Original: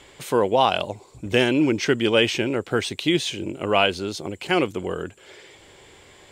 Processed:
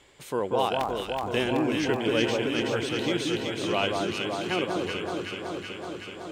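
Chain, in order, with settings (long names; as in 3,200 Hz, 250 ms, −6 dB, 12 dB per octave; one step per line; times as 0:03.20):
0:00.79–0:01.24: sub-harmonics by changed cycles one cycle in 2, inverted
delay that swaps between a low-pass and a high-pass 188 ms, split 1,400 Hz, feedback 87%, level −2 dB
level −8.5 dB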